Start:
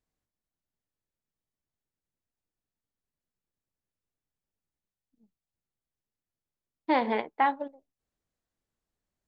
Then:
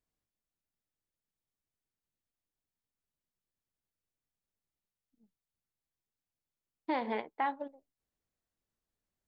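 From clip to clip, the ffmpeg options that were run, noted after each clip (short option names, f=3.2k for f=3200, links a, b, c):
-af "alimiter=limit=-18dB:level=0:latency=1:release=341,volume=-3.5dB"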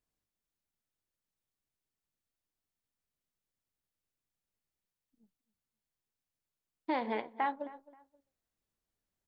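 -filter_complex "[0:a]asplit=2[a][b];[b]adelay=265,lowpass=f=2.3k:p=1,volume=-18.5dB,asplit=2[c][d];[d]adelay=265,lowpass=f=2.3k:p=1,volume=0.29[e];[a][c][e]amix=inputs=3:normalize=0"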